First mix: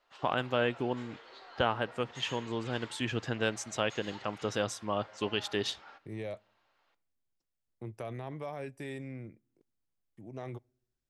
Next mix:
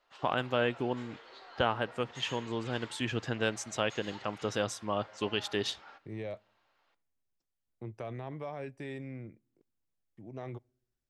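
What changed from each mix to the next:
second voice: add air absorption 81 m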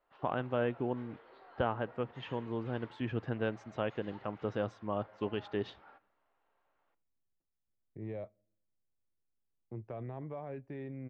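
second voice: entry +1.90 s; master: add tape spacing loss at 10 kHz 44 dB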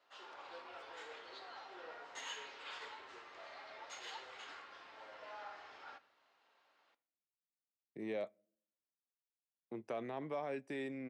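first voice: muted; second voice: add HPF 190 Hz 24 dB/oct; master: remove tape spacing loss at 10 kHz 44 dB

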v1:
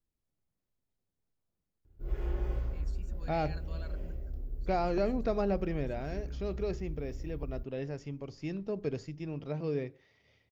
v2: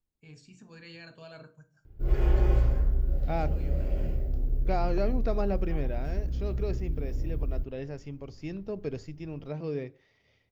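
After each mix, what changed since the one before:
first voice: entry -2.50 s; background +8.5 dB; reverb: on, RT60 0.45 s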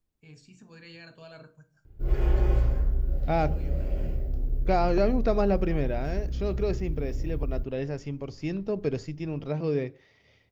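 second voice +6.0 dB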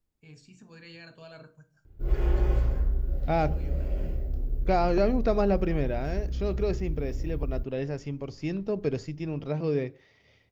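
background: send -9.5 dB

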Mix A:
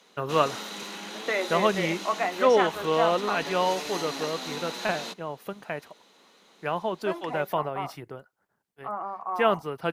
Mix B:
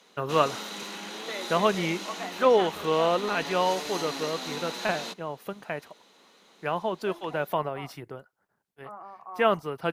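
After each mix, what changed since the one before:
second voice -10.0 dB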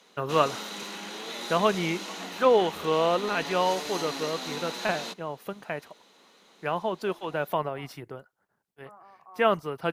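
second voice -8.5 dB

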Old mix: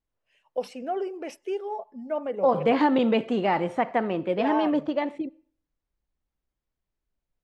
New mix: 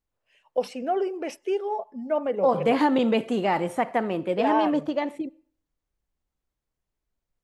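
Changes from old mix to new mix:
first voice +4.0 dB; second voice: remove LPF 4500 Hz 12 dB/oct

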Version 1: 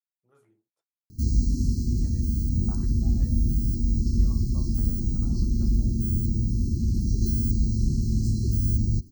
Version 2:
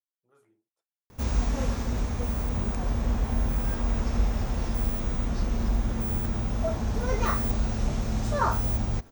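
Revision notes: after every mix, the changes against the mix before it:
background: remove brick-wall FIR band-stop 390–4000 Hz; master: add bell 110 Hz -7 dB 2.1 oct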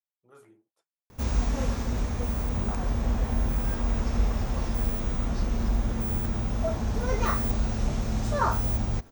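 speech +10.5 dB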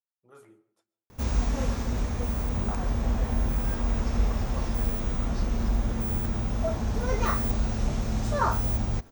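reverb: on, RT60 0.70 s

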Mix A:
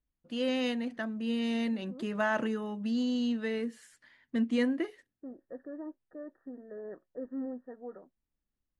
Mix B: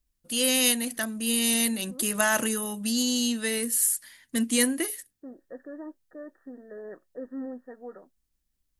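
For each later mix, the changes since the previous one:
first voice: add low shelf 86 Hz +11 dB; master: remove tape spacing loss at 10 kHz 40 dB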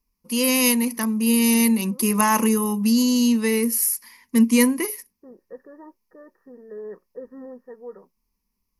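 first voice: add fifteen-band EQ 100 Hz -4 dB, 250 Hz +12 dB, 1000 Hz +9 dB; master: add ripple EQ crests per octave 0.83, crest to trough 13 dB

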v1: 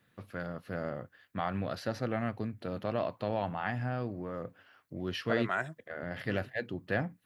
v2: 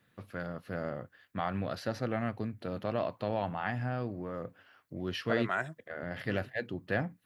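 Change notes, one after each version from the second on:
none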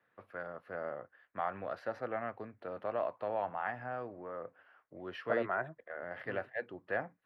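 second voice: add tilt -3.5 dB/oct; master: add three-band isolator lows -17 dB, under 410 Hz, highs -20 dB, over 2100 Hz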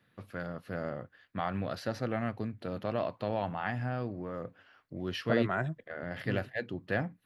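master: remove three-band isolator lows -17 dB, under 410 Hz, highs -20 dB, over 2100 Hz

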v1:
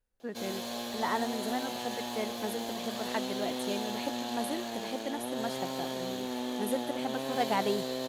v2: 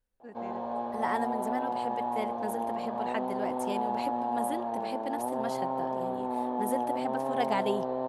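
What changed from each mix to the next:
first voice -8.5 dB; background: add synth low-pass 890 Hz, resonance Q 3.8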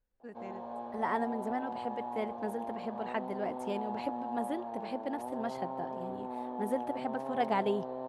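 second voice: add LPF 2200 Hz 6 dB/oct; background -7.5 dB

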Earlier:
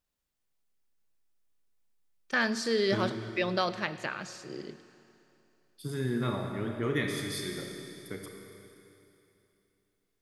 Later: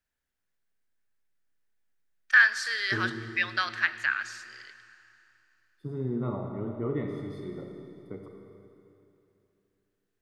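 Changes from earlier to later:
first voice: add resonant high-pass 1600 Hz, resonance Q 4.1; second voice: add polynomial smoothing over 65 samples

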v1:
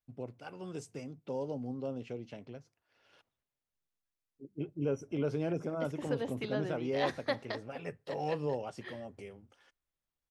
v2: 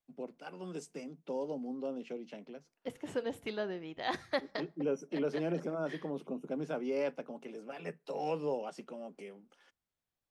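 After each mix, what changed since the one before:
first voice: add steep high-pass 160 Hz 72 dB/oct; second voice: entry -2.95 s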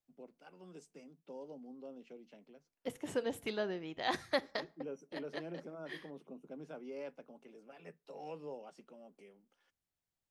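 first voice -11.0 dB; second voice: add high shelf 7100 Hz +9 dB

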